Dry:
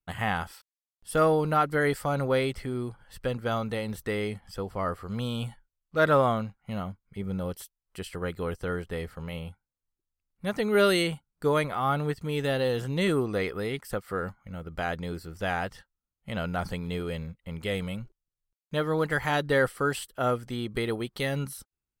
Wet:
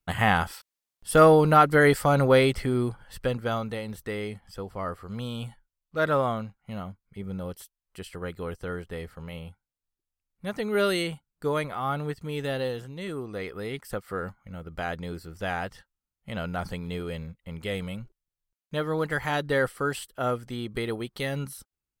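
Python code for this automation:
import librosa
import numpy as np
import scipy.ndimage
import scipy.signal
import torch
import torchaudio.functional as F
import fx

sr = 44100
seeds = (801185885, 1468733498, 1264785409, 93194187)

y = fx.gain(x, sr, db=fx.line((2.88, 6.5), (3.83, -2.5), (12.65, -2.5), (12.95, -11.0), (13.81, -1.0)))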